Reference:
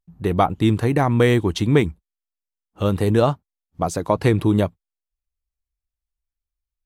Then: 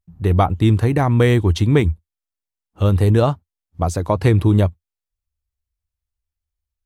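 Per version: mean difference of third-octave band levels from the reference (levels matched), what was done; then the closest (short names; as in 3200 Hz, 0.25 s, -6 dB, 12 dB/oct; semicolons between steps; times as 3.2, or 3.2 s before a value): 2.5 dB: bell 83 Hz +13 dB 0.75 oct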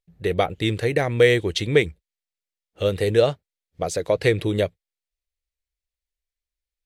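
4.0 dB: graphic EQ 250/500/1000/2000/4000/8000 Hz -8/+12/-12/+10/+7/+4 dB; gain -5 dB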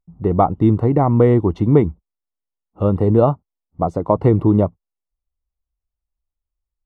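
6.5 dB: polynomial smoothing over 65 samples; gain +3.5 dB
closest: first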